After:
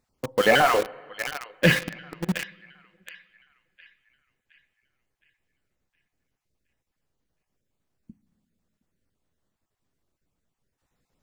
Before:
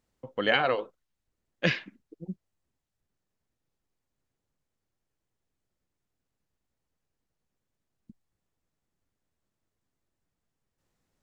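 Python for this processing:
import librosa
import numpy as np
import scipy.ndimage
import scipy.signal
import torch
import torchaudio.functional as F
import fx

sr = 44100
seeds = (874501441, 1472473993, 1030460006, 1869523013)

p1 = fx.spec_dropout(x, sr, seeds[0], share_pct=20)
p2 = fx.high_shelf(p1, sr, hz=2100.0, db=-2.0)
p3 = fx.comb_fb(p2, sr, f0_hz=56.0, decay_s=0.48, harmonics='odd', damping=0.0, mix_pct=40)
p4 = p3 + fx.echo_banded(p3, sr, ms=716, feedback_pct=44, hz=2300.0, wet_db=-12.0, dry=0)
p5 = fx.rev_plate(p4, sr, seeds[1], rt60_s=1.9, hf_ratio=0.75, predelay_ms=0, drr_db=15.0)
p6 = fx.quant_companded(p5, sr, bits=2)
p7 = p5 + (p6 * librosa.db_to_amplitude(-7.5))
y = p7 * librosa.db_to_amplitude(8.5)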